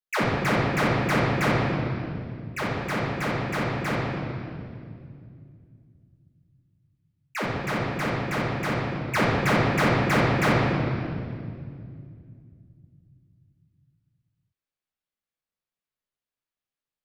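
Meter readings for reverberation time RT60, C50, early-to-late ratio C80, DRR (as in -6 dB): 2.3 s, -2.0 dB, 0.5 dB, -9.0 dB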